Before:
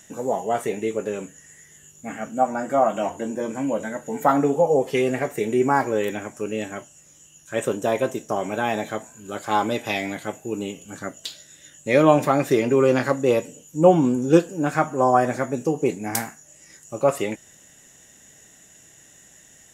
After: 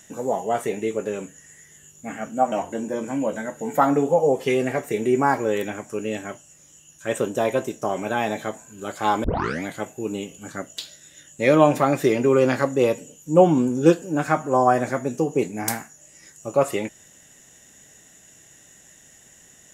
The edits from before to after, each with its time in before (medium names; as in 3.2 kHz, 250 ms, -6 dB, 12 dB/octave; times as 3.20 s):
2.52–2.99 s: delete
9.71 s: tape start 0.39 s